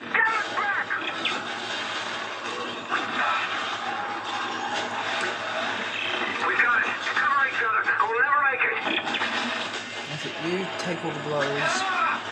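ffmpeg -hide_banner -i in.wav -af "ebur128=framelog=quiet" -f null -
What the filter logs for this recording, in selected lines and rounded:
Integrated loudness:
  I:         -25.2 LUFS
  Threshold: -35.2 LUFS
Loudness range:
  LRA:         5.3 LU
  Threshold: -45.0 LUFS
  LRA low:   -27.7 LUFS
  LRA high:  -22.4 LUFS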